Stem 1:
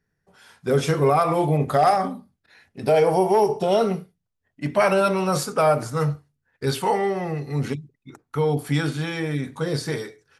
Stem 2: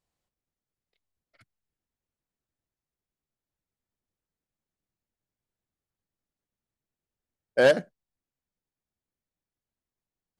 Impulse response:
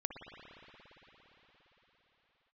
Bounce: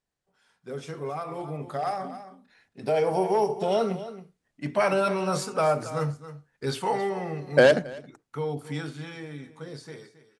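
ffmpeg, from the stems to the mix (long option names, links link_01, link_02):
-filter_complex "[0:a]highpass=120,volume=-16dB,asplit=2[link_01][link_02];[link_02]volume=-14dB[link_03];[1:a]acompressor=threshold=-22dB:ratio=5,volume=-2dB,asplit=2[link_04][link_05];[link_05]volume=-22dB[link_06];[link_03][link_06]amix=inputs=2:normalize=0,aecho=0:1:272:1[link_07];[link_01][link_04][link_07]amix=inputs=3:normalize=0,lowpass=frequency=10000:width=0.5412,lowpass=frequency=10000:width=1.3066,dynaudnorm=framelen=290:gausssize=17:maxgain=11.5dB"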